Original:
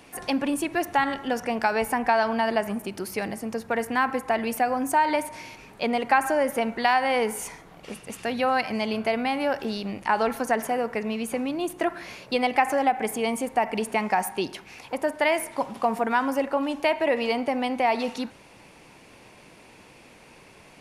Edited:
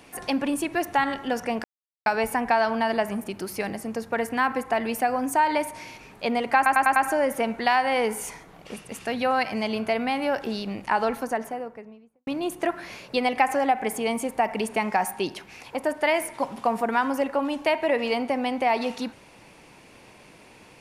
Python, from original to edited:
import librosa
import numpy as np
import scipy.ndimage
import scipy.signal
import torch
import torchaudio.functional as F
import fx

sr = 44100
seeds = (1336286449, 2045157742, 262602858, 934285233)

y = fx.studio_fade_out(x, sr, start_s=10.03, length_s=1.42)
y = fx.edit(y, sr, fx.insert_silence(at_s=1.64, length_s=0.42),
    fx.stutter(start_s=6.14, slice_s=0.1, count=5), tone=tone)